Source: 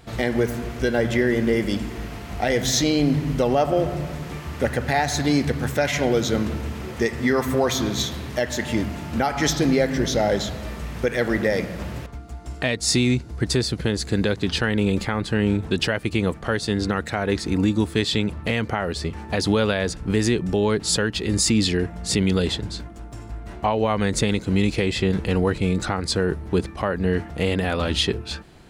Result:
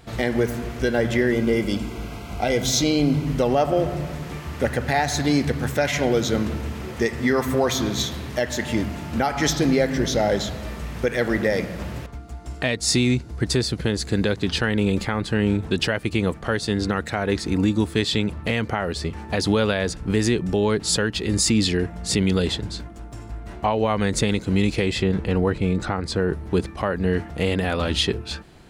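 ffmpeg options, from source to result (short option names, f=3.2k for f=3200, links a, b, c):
-filter_complex "[0:a]asettb=1/sr,asplit=3[a][b][c];[a]atrim=end=1.324[d];[b]atrim=start=1.32:end=3.27,asetpts=PTS-STARTPTS,afade=t=in:d=0.004:c=qsin,afade=t=out:st=1.946:d=0.004:c=qsin,asuperstop=centerf=1800:order=12:qfactor=6.1[e];[c]atrim=start=3.266[f];[d][e]acrossfade=d=0.004:c1=hsin:c2=qsin[g];[g][f]acrossfade=d=0.004:c1=qsin:c2=hsin,asettb=1/sr,asplit=3[h][i][j];[h]atrim=end=25.034[k];[i]atrim=start=25.03:end=26.33,asetpts=PTS-STARTPTS,afade=t=in:d=0.004:c=qsin,afade=t=out:st=1.296:d=0.004:c=qsin,highshelf=f=3.6k:g=-9[l];[j]atrim=start=26.326[m];[k][l]acrossfade=d=0.004:c1=hsin:c2=qsin[n];[n][m]acrossfade=d=0.004:c1=qsin:c2=hsin"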